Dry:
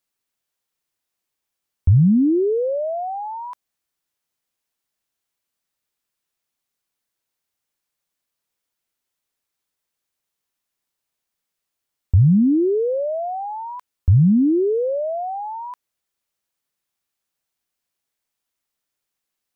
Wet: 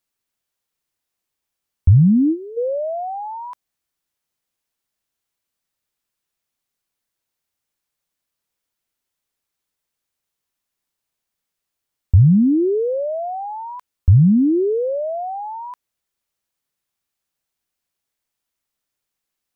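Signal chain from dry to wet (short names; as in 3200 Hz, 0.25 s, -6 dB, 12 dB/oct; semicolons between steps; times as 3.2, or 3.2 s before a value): low shelf 150 Hz +4 dB; spectral gain 2.02–2.57, 340–710 Hz -15 dB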